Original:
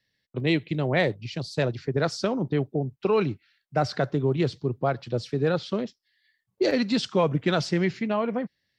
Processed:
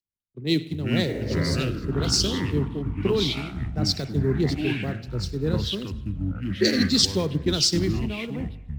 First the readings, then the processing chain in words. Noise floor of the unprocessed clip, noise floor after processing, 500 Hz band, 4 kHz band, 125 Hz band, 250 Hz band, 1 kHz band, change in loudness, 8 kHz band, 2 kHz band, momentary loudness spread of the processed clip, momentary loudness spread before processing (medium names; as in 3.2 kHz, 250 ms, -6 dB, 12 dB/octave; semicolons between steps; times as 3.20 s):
-79 dBFS, -42 dBFS, -3.0 dB, +10.0 dB, +3.0 dB, +2.0 dB, -8.0 dB, +1.5 dB, +14.5 dB, -1.0 dB, 10 LU, 7 LU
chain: spectral replace 1.11–1.60 s, 220–2400 Hz; short-mantissa float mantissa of 6-bit; treble shelf 2.1 kHz +11 dB; upward compressor, threshold -40 dBFS; hysteresis with a dead band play -41.5 dBFS; high-order bell 1.3 kHz -13 dB 2.8 oct; on a send: feedback echo behind a high-pass 102 ms, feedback 47%, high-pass 1.5 kHz, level -17 dB; on the sum: spring tank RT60 1.5 s, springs 49 ms, chirp 40 ms, DRR 13 dB; ever faster or slower copies 202 ms, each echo -6 st, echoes 3; three bands expanded up and down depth 100%